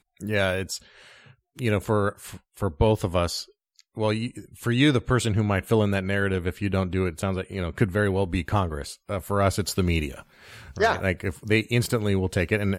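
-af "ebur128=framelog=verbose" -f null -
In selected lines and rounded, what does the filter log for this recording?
Integrated loudness:
  I:         -25.3 LUFS
  Threshold: -35.8 LUFS
Loudness range:
  LRA:         2.7 LU
  Threshold: -45.7 LUFS
  LRA low:   -27.0 LUFS
  LRA high:  -24.4 LUFS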